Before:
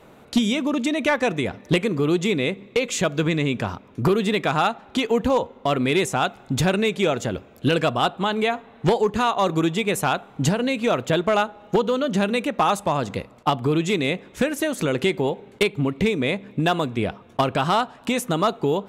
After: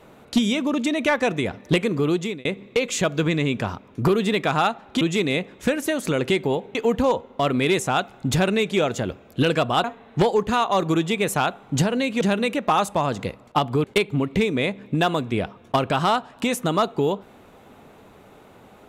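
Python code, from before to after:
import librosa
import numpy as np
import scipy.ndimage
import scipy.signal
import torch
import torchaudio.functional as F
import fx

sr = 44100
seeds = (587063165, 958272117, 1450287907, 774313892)

y = fx.edit(x, sr, fx.fade_out_span(start_s=1.96, length_s=0.49, curve='qsin'),
    fx.cut(start_s=8.1, length_s=0.41),
    fx.cut(start_s=10.88, length_s=1.24),
    fx.move(start_s=13.75, length_s=1.74, to_s=5.01), tone=tone)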